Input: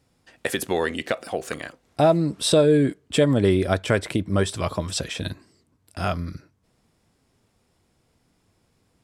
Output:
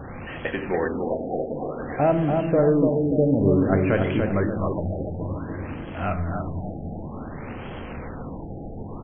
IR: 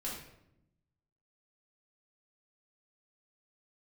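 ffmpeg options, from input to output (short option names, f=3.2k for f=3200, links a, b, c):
-filter_complex "[0:a]aeval=exprs='val(0)+0.5*0.0531*sgn(val(0))':c=same,highshelf=f=6.4k:g=-11,asplit=2[a][b];[b]adelay=289,lowpass=f=2k:p=1,volume=-4dB,asplit=2[c][d];[d]adelay=289,lowpass=f=2k:p=1,volume=0.49,asplit=2[e][f];[f]adelay=289,lowpass=f=2k:p=1,volume=0.49,asplit=2[g][h];[h]adelay=289,lowpass=f=2k:p=1,volume=0.49,asplit=2[i][j];[j]adelay=289,lowpass=f=2k:p=1,volume=0.49,asplit=2[k][l];[l]adelay=289,lowpass=f=2k:p=1,volume=0.49[m];[a][c][e][g][i][k][m]amix=inputs=7:normalize=0,asplit=2[n][o];[1:a]atrim=start_sample=2205[p];[o][p]afir=irnorm=-1:irlink=0,volume=-6dB[q];[n][q]amix=inputs=2:normalize=0,afftfilt=real='re*lt(b*sr/1024,820*pow(3400/820,0.5+0.5*sin(2*PI*0.55*pts/sr)))':imag='im*lt(b*sr/1024,820*pow(3400/820,0.5+0.5*sin(2*PI*0.55*pts/sr)))':win_size=1024:overlap=0.75,volume=-6dB"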